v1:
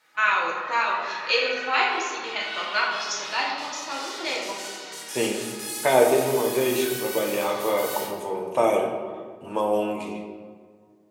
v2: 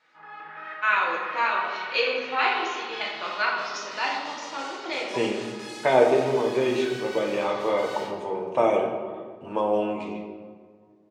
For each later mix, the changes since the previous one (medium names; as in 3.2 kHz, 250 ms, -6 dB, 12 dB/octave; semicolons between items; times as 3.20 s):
first voice: entry +0.65 s; master: add distance through air 140 m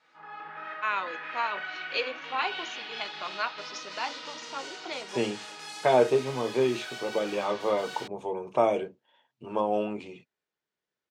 first voice: send off; second voice: send off; master: add peaking EQ 1.9 kHz -3.5 dB 0.55 oct